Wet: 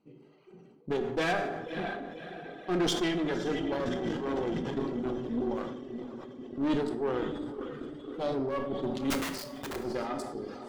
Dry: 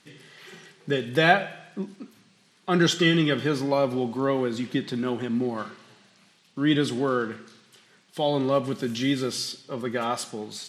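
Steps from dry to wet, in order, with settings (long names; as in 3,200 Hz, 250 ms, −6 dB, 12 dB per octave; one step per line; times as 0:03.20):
adaptive Wiener filter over 25 samples
parametric band 340 Hz +7 dB 0.98 octaves
on a send: feedback delay with all-pass diffusion 555 ms, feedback 60%, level −8 dB
0:03.84–0:04.77: on the sum: transient designer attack −11 dB, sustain +10 dB
reverb reduction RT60 1.7 s
0:09.10–0:09.76: wrap-around overflow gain 24.5 dB
tube saturation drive 19 dB, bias 0.6
dense smooth reverb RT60 1.2 s, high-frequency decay 0.55×, DRR 6.5 dB
level that may fall only so fast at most 41 dB per second
level −5.5 dB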